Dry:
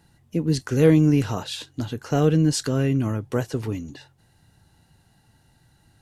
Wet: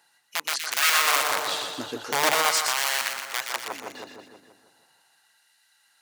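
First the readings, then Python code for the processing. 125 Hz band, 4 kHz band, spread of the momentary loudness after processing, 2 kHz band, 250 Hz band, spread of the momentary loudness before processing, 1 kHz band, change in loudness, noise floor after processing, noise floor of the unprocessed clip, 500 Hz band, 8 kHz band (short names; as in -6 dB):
-31.5 dB, +9.5 dB, 16 LU, +12.0 dB, -21.5 dB, 14 LU, +9.5 dB, -1.5 dB, -65 dBFS, -61 dBFS, -9.0 dB, +8.5 dB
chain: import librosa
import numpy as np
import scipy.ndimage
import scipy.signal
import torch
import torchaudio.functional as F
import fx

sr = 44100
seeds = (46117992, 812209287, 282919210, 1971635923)

y = (np.mod(10.0 ** (15.5 / 20.0) * x + 1.0, 2.0) - 1.0) / 10.0 ** (15.5 / 20.0)
y = fx.echo_split(y, sr, split_hz=1700.0, low_ms=160, high_ms=120, feedback_pct=52, wet_db=-5)
y = fx.filter_lfo_highpass(y, sr, shape='sine', hz=0.4, low_hz=420.0, high_hz=1700.0, q=0.86)
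y = y * librosa.db_to_amplitude(1.5)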